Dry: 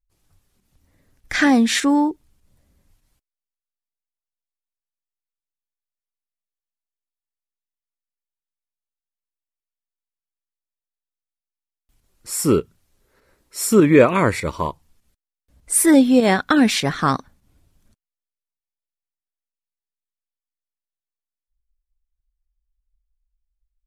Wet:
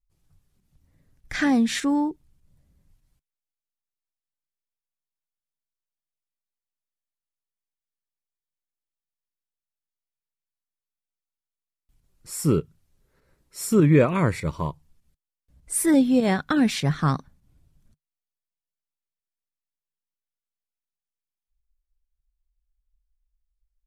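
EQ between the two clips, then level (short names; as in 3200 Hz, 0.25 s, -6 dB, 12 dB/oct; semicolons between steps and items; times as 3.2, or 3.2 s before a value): bell 150 Hz +8.5 dB 0.37 oct; low shelf 190 Hz +7.5 dB; -8.0 dB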